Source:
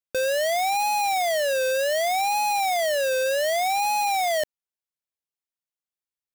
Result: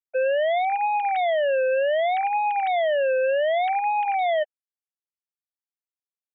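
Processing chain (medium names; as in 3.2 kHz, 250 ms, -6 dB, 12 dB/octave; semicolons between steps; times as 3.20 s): formants replaced by sine waves; bass shelf 230 Hz +9.5 dB; band-stop 1.2 kHz, Q 8.5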